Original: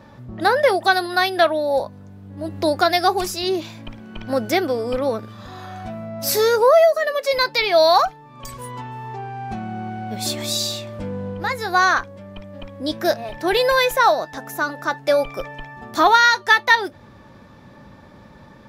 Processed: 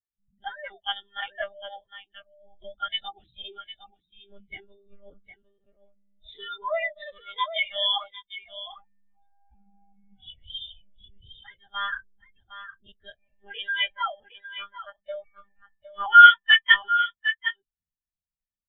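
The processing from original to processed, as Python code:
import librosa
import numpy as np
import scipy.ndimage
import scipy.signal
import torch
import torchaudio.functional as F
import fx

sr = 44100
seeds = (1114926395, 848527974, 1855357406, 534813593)

p1 = fx.freq_compress(x, sr, knee_hz=2100.0, ratio=1.5)
p2 = fx.curve_eq(p1, sr, hz=(170.0, 390.0, 1000.0, 2500.0), db=(0, -9, -4, 8))
p3 = p2 + fx.echo_single(p2, sr, ms=756, db=-5.0, dry=0)
p4 = fx.lpc_monotone(p3, sr, seeds[0], pitch_hz=200.0, order=16)
p5 = fx.spectral_expand(p4, sr, expansion=2.5)
y = p5 * librosa.db_to_amplitude(-4.0)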